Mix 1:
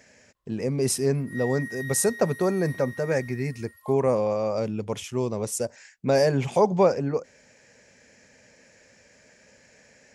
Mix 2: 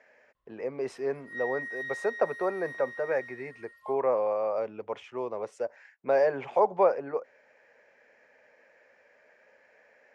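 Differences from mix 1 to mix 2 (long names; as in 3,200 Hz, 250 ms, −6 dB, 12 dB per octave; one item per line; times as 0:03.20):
speech: add three-way crossover with the lows and the highs turned down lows −24 dB, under 420 Hz, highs −17 dB, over 2,200 Hz
master: add low-pass filter 4,300 Hz 12 dB per octave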